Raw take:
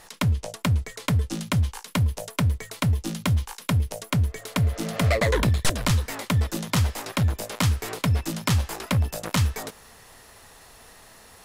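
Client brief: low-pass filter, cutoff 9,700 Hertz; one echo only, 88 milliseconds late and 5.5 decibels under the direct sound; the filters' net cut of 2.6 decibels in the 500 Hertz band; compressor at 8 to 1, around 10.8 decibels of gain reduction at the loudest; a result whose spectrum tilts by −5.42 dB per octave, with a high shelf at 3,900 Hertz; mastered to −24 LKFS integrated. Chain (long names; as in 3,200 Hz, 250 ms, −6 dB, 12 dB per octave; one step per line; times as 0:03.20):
low-pass filter 9,700 Hz
parametric band 500 Hz −3 dB
high-shelf EQ 3,900 Hz −8.5 dB
downward compressor 8 to 1, threshold −29 dBFS
single-tap delay 88 ms −5.5 dB
level +9.5 dB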